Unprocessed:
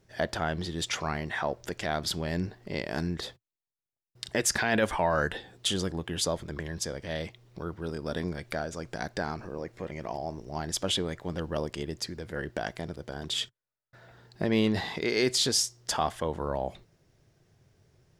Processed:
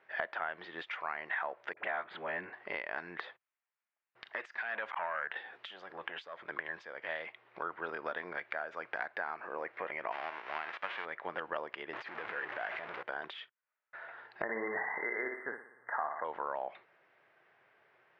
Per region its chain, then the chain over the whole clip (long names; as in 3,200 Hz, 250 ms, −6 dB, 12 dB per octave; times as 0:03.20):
0:01.73–0:02.53: moving average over 8 samples + all-pass dispersion highs, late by 44 ms, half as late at 670 Hz
0:04.27–0:06.40: high-shelf EQ 4,200 Hz +7 dB + downward compressor 2 to 1, threshold −31 dBFS + saturating transformer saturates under 970 Hz
0:10.11–0:11.04: spectral envelope flattened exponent 0.3 + low-pass filter 2,600 Hz 6 dB per octave
0:11.93–0:13.03: converter with a step at zero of −30.5 dBFS + downward compressor, threshold −32 dBFS
0:14.42–0:16.25: linear-phase brick-wall band-stop 2,100–8,300 Hz + flutter between parallel walls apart 9.9 metres, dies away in 0.57 s
whole clip: high-pass filter 1,000 Hz 12 dB per octave; downward compressor 5 to 1, threshold −45 dBFS; low-pass filter 2,300 Hz 24 dB per octave; level +11.5 dB